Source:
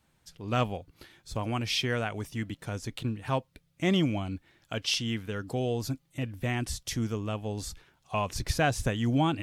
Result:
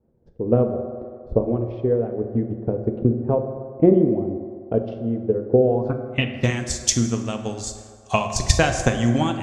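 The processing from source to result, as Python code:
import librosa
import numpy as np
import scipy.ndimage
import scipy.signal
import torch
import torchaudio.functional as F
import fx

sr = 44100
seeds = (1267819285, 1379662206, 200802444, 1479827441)

y = fx.transient(x, sr, attack_db=11, sustain_db=-3)
y = fx.filter_sweep_lowpass(y, sr, from_hz=460.0, to_hz=7100.0, start_s=5.56, end_s=6.53, q=3.6)
y = fx.rev_fdn(y, sr, rt60_s=2.1, lf_ratio=0.7, hf_ratio=0.45, size_ms=26.0, drr_db=5.0)
y = y * 10.0 ** (1.5 / 20.0)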